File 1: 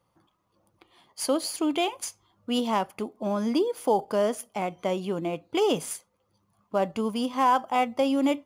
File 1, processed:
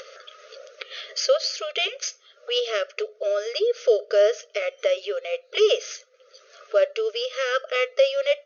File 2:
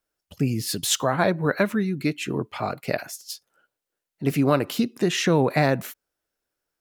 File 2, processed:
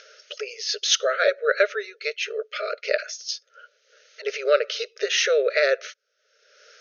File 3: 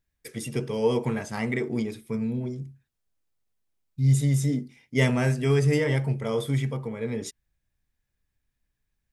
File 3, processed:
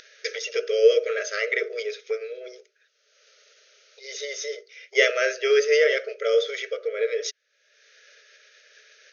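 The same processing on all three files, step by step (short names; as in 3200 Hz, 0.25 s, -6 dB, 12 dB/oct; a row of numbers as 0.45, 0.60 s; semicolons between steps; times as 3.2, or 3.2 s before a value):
elliptic band-stop 620–1300 Hz, stop band 40 dB; upward compressor, threshold -27 dBFS; brick-wall FIR band-pass 400–6700 Hz; match loudness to -24 LUFS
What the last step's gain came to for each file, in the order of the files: +8.0, +5.0, +9.0 dB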